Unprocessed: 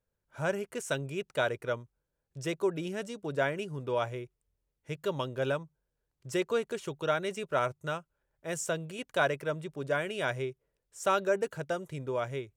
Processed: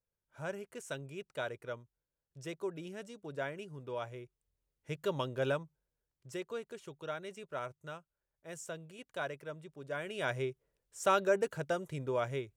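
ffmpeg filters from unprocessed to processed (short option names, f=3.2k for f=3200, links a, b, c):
-af "volume=8dB,afade=t=in:st=4.08:d=0.86:silence=0.446684,afade=t=out:st=5.53:d=0.88:silence=0.354813,afade=t=in:st=9.87:d=0.59:silence=0.316228"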